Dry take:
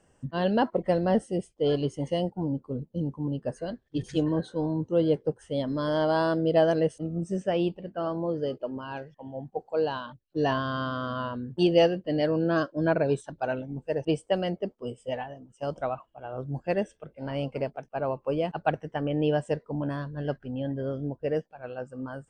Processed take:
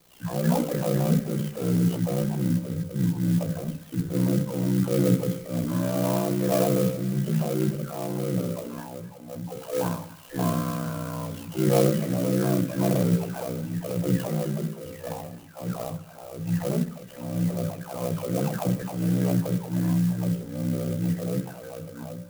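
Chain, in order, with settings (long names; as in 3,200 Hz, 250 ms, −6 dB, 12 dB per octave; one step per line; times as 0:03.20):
every frequency bin delayed by itself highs early, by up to 667 ms
high-shelf EQ 3,400 Hz −10.5 dB
hum removal 60.68 Hz, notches 9
transient designer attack −4 dB, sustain +7 dB
dynamic equaliser 160 Hz, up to +7 dB, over −43 dBFS, Q 1.6
ring modulation 31 Hz
in parallel at −8.5 dB: decimation without filtering 25×
on the sum: delay with a high-pass on its return 262 ms, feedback 52%, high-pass 1,700 Hz, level −9 dB
on a send at −8 dB: convolution reverb RT60 0.45 s, pre-delay 3 ms
on the sum: converter with an unsteady clock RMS 0.065 ms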